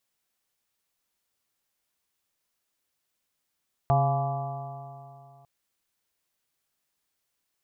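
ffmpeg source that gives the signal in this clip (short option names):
-f lavfi -i "aevalsrc='0.0891*pow(10,-3*t/2.67)*sin(2*PI*135.16*t)+0.00944*pow(10,-3*t/2.67)*sin(2*PI*271.29*t)+0.015*pow(10,-3*t/2.67)*sin(2*PI*409.35*t)+0.00944*pow(10,-3*t/2.67)*sin(2*PI*550.27*t)+0.0891*pow(10,-3*t/2.67)*sin(2*PI*694.96*t)+0.0355*pow(10,-3*t/2.67)*sin(2*PI*844.27*t)+0.0188*pow(10,-3*t/2.67)*sin(2*PI*999.02*t)+0.0266*pow(10,-3*t/2.67)*sin(2*PI*1159.98*t)':d=1.55:s=44100"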